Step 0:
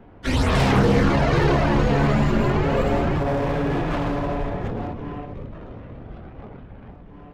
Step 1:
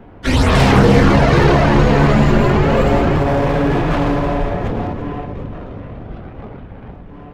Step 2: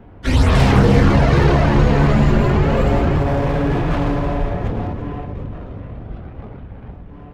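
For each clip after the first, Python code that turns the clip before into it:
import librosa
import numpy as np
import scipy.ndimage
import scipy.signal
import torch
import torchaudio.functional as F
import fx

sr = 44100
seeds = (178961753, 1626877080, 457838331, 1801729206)

y1 = fx.echo_multitap(x, sr, ms=(341, 734), db=(-13.0, -18.0))
y1 = F.gain(torch.from_numpy(y1), 7.0).numpy()
y2 = fx.peak_eq(y1, sr, hz=63.0, db=6.5, octaves=2.4)
y2 = F.gain(torch.from_numpy(y2), -4.5).numpy()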